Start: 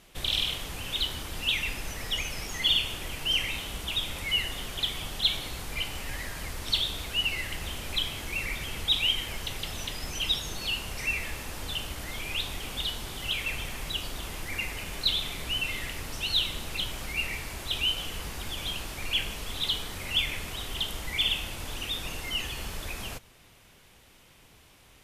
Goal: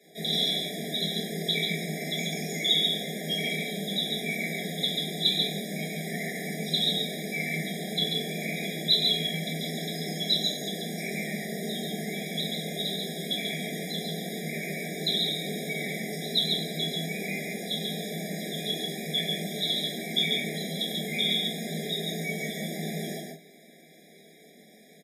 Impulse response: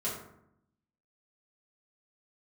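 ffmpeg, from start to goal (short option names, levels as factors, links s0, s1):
-filter_complex "[0:a]highpass=f=54:p=1,equalizer=f=80:t=o:w=0.4:g=-7,afreqshift=140,aecho=1:1:139:0.668[s0];[1:a]atrim=start_sample=2205,atrim=end_sample=3087[s1];[s0][s1]afir=irnorm=-1:irlink=0,afftfilt=real='re*eq(mod(floor(b*sr/1024/810),2),0)':imag='im*eq(mod(floor(b*sr/1024/810),2),0)':win_size=1024:overlap=0.75"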